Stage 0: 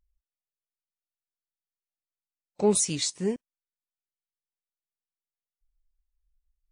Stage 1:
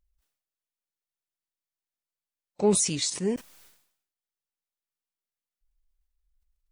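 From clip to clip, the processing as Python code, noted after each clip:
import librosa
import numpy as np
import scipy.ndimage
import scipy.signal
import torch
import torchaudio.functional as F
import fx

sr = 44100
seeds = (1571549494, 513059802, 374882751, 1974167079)

y = fx.sustainer(x, sr, db_per_s=85.0)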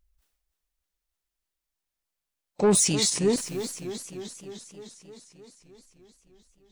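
y = 10.0 ** (-19.0 / 20.0) * np.tanh(x / 10.0 ** (-19.0 / 20.0))
y = fx.echo_warbled(y, sr, ms=306, feedback_pct=70, rate_hz=2.8, cents=105, wet_db=-11.5)
y = F.gain(torch.from_numpy(y), 5.0).numpy()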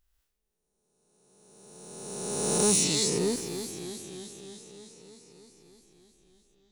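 y = fx.spec_swells(x, sr, rise_s=1.98)
y = F.gain(torch.from_numpy(y), -7.5).numpy()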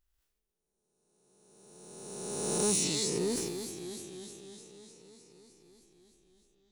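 y = fx.peak_eq(x, sr, hz=350.0, db=4.0, octaves=0.25)
y = fx.sustainer(y, sr, db_per_s=33.0)
y = F.gain(torch.from_numpy(y), -5.5).numpy()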